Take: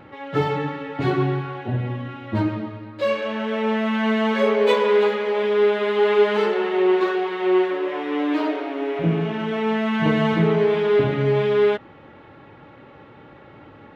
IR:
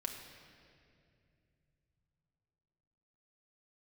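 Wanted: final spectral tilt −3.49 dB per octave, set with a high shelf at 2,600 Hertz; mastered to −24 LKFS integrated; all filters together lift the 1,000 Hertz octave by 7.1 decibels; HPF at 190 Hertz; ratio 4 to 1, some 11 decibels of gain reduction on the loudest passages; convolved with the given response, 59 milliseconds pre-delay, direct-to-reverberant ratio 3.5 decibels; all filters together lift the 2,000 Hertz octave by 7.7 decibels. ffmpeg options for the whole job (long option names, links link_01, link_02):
-filter_complex "[0:a]highpass=190,equalizer=frequency=1000:width_type=o:gain=7,equalizer=frequency=2000:width_type=o:gain=8.5,highshelf=frequency=2600:gain=-3,acompressor=threshold=-24dB:ratio=4,asplit=2[link_01][link_02];[1:a]atrim=start_sample=2205,adelay=59[link_03];[link_02][link_03]afir=irnorm=-1:irlink=0,volume=-3.5dB[link_04];[link_01][link_04]amix=inputs=2:normalize=0,volume=1.5dB"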